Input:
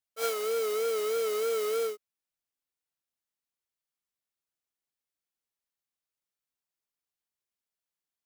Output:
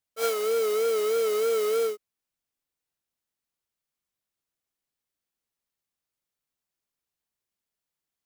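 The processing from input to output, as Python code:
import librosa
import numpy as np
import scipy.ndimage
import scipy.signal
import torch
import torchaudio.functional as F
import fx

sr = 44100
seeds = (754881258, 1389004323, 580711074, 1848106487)

y = fx.low_shelf(x, sr, hz=400.0, db=5.0)
y = F.gain(torch.from_numpy(y), 2.5).numpy()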